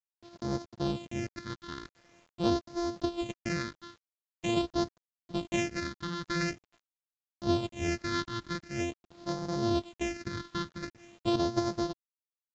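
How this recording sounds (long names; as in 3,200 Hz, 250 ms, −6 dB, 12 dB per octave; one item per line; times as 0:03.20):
a buzz of ramps at a fixed pitch in blocks of 128 samples
phaser sweep stages 6, 0.45 Hz, lowest notch 650–2,600 Hz
a quantiser's noise floor 10 bits, dither none
mu-law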